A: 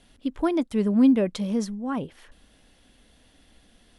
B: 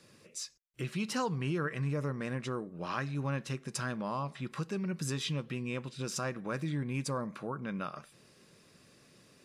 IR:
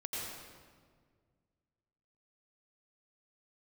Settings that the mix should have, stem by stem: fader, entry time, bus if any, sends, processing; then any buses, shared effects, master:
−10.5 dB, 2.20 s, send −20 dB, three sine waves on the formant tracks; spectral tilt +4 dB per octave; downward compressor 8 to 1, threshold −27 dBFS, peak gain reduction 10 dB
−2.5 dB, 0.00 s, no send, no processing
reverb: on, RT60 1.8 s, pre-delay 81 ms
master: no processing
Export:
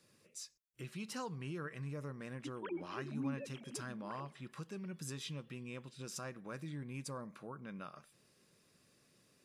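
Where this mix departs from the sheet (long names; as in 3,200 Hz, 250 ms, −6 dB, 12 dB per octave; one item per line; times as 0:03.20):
stem B −2.5 dB → −10.0 dB
master: extra high-shelf EQ 9,500 Hz +8.5 dB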